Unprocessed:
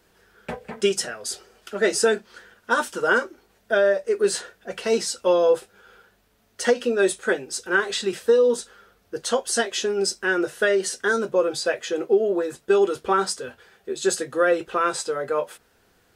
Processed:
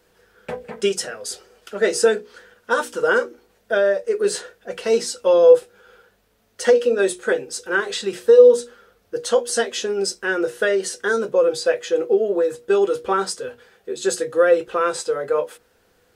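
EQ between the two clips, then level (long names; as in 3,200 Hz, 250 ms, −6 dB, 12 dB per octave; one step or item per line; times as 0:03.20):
parametric band 490 Hz +9 dB 0.21 octaves
mains-hum notches 60/120/180/240/300/360/420/480 Hz
0.0 dB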